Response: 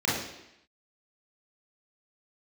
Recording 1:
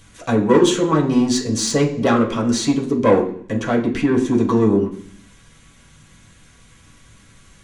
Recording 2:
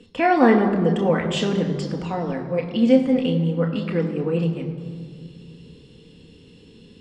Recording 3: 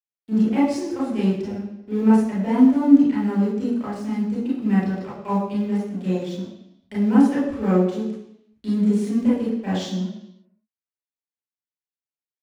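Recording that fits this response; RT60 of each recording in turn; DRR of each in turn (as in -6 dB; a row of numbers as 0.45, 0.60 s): 3; 0.55, 2.1, 0.85 s; -3.5, 2.5, -7.5 dB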